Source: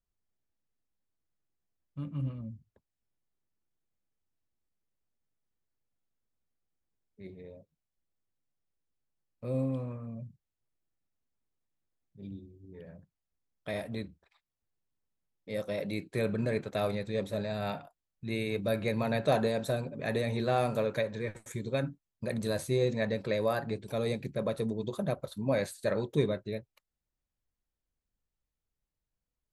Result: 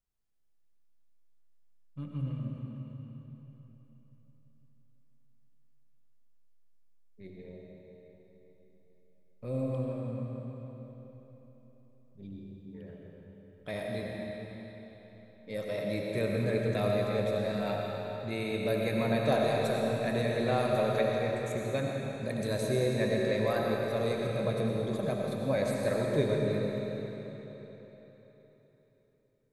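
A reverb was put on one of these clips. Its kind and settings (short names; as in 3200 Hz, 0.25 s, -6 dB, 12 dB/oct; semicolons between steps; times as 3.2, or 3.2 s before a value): digital reverb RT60 4 s, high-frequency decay 0.9×, pre-delay 50 ms, DRR -1.5 dB; gain -2 dB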